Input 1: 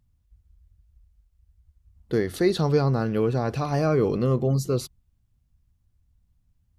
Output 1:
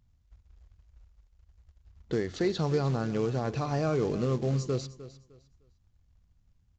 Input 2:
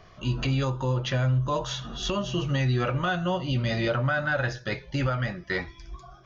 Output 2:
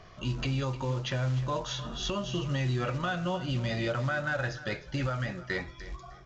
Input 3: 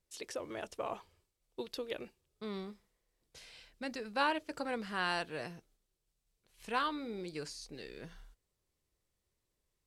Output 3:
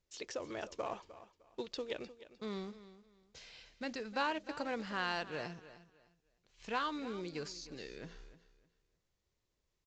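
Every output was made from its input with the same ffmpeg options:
-filter_complex "[0:a]acompressor=threshold=-36dB:ratio=1.5,acrusher=bits=5:mode=log:mix=0:aa=0.000001,asplit=2[a][b];[b]aecho=0:1:305|610|915:0.168|0.042|0.0105[c];[a][c]amix=inputs=2:normalize=0,aresample=16000,aresample=44100"

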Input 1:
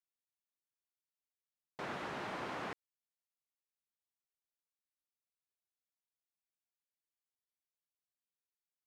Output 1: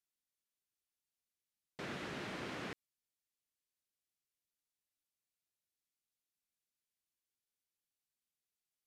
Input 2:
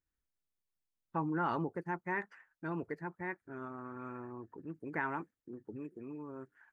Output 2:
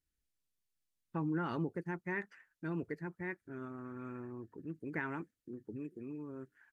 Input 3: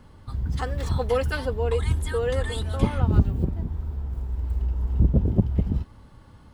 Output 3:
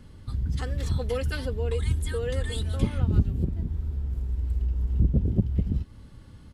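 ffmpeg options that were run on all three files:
-filter_complex "[0:a]asplit=2[a][b];[b]acompressor=threshold=-30dB:ratio=6,volume=2dB[c];[a][c]amix=inputs=2:normalize=0,equalizer=f=900:w=0.91:g=-10.5,aresample=32000,aresample=44100,volume=-4.5dB"

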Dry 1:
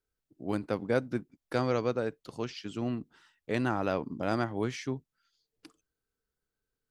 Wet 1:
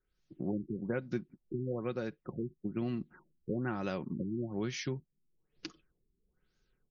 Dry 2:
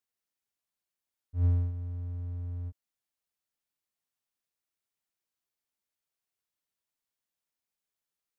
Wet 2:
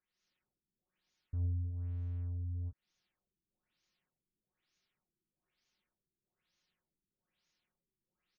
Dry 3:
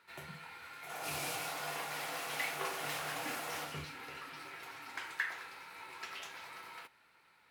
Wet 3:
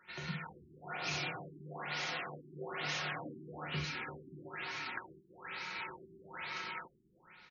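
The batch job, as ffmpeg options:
-af "acompressor=threshold=-48dB:ratio=2.5,aecho=1:1:5.5:0.45,dynaudnorm=f=140:g=3:m=6.5dB,equalizer=f=780:t=o:w=2:g=-8,afftfilt=real='re*lt(b*sr/1024,390*pow(7000/390,0.5+0.5*sin(2*PI*1.1*pts/sr)))':imag='im*lt(b*sr/1024,390*pow(7000/390,0.5+0.5*sin(2*PI*1.1*pts/sr)))':win_size=1024:overlap=0.75,volume=6dB"

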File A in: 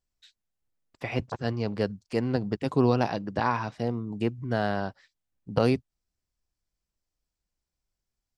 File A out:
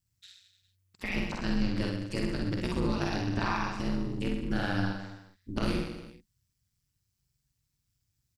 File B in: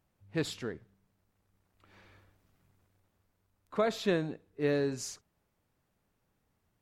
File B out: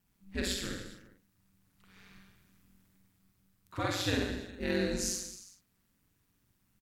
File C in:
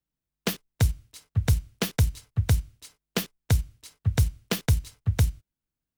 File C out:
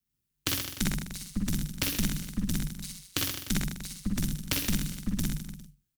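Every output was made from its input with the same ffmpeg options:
-filter_complex "[0:a]aeval=exprs='0.422*(cos(1*acos(clip(val(0)/0.422,-1,1)))-cos(1*PI/2))+0.0422*(cos(4*acos(clip(val(0)/0.422,-1,1)))-cos(4*PI/2))':c=same,equalizer=f=560:w=0.77:g=-12.5,acompressor=threshold=-30dB:ratio=4,asplit=2[a][b];[b]aecho=0:1:60|129|208.4|299.6|404.5:0.631|0.398|0.251|0.158|0.1[c];[a][c]amix=inputs=2:normalize=0,aeval=exprs='val(0)*sin(2*PI*94*n/s)':c=same,highshelf=f=6.7k:g=5.5,asplit=2[d][e];[e]adelay=47,volume=-5dB[f];[d][f]amix=inputs=2:normalize=0,volume=4.5dB"

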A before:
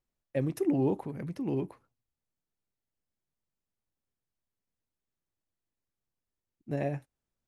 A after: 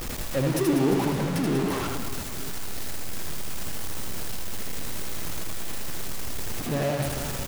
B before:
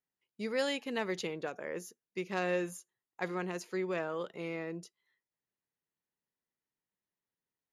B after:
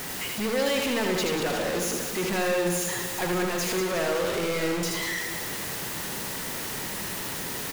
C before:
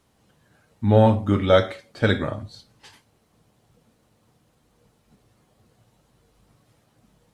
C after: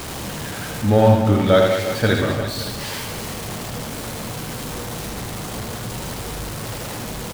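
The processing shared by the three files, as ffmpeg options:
-af "aeval=exprs='val(0)+0.5*0.0531*sgn(val(0))':c=same,aecho=1:1:80|192|348.8|568.3|875.6:0.631|0.398|0.251|0.158|0.1"

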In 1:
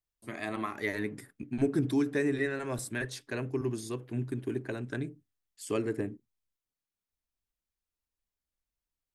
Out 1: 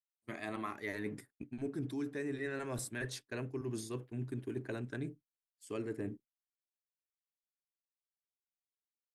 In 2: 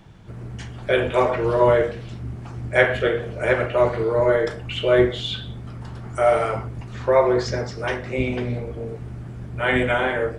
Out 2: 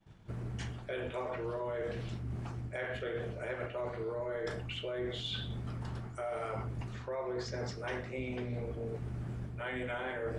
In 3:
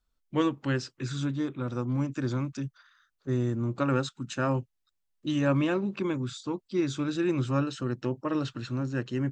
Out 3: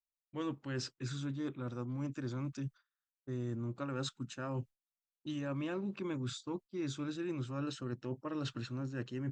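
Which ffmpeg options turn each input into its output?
-af "agate=range=-33dB:threshold=-38dB:ratio=3:detection=peak,alimiter=limit=-14dB:level=0:latency=1:release=157,areverse,acompressor=threshold=-35dB:ratio=6,areverse,volume=-1dB"

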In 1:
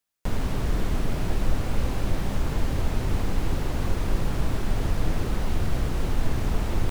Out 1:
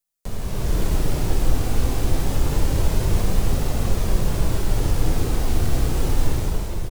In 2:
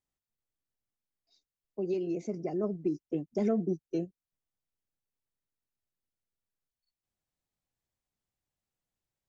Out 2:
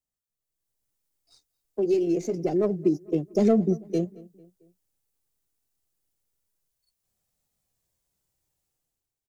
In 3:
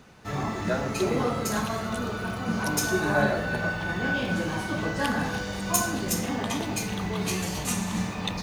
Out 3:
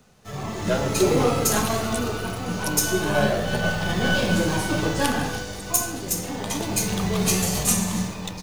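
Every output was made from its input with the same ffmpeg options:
-filter_complex "[0:a]acrossover=split=120|970|5800[a][b][c][d];[c]aeval=exprs='max(val(0),0)':c=same[e];[a][b][e][d]amix=inputs=4:normalize=0,highshelf=f=3k:g=7,dynaudnorm=f=140:g=9:m=12.5dB,flanger=delay=1.5:depth=1.2:regen=-66:speed=0.27:shape=triangular,asplit=2[f][g];[g]adelay=223,lowpass=f=2.6k:p=1,volume=-21.5dB,asplit=2[h][i];[i]adelay=223,lowpass=f=2.6k:p=1,volume=0.48,asplit=2[j][k];[k]adelay=223,lowpass=f=2.6k:p=1,volume=0.48[l];[f][h][j][l]amix=inputs=4:normalize=0"

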